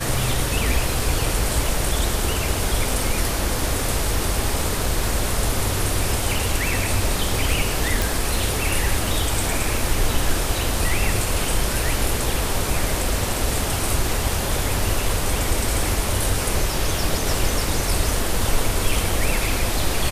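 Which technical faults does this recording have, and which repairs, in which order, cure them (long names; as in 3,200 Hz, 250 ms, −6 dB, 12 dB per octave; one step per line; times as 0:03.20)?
0:08.02: click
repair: click removal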